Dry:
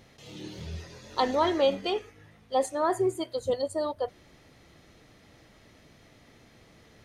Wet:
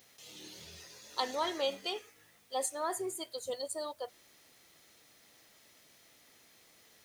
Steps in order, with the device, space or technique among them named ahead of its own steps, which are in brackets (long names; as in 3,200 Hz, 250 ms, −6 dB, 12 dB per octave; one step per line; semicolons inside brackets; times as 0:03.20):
turntable without a phono preamp (RIAA equalisation recording; white noise bed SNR 28 dB)
level −8 dB